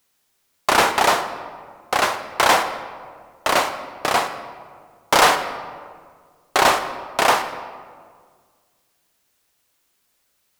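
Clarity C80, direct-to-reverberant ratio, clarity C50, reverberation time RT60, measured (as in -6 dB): 11.0 dB, 8.5 dB, 9.5 dB, 1.8 s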